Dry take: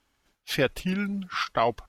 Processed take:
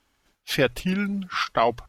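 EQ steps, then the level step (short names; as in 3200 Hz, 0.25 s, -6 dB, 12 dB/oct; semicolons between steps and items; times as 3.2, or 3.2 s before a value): notches 60/120 Hz; +3.0 dB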